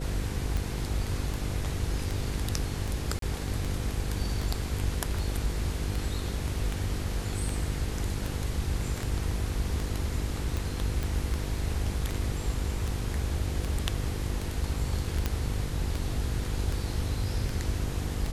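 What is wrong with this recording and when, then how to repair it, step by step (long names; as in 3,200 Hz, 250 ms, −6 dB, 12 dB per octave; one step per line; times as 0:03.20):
mains buzz 50 Hz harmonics 10 −35 dBFS
scratch tick 78 rpm
0:03.19–0:03.22: drop-out 33 ms
0:11.03: click
0:15.26: click −13 dBFS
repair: click removal
hum removal 50 Hz, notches 10
repair the gap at 0:03.19, 33 ms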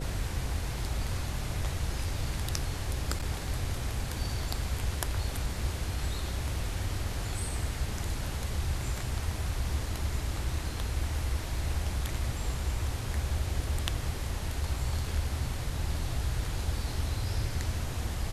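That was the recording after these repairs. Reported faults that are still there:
none of them is left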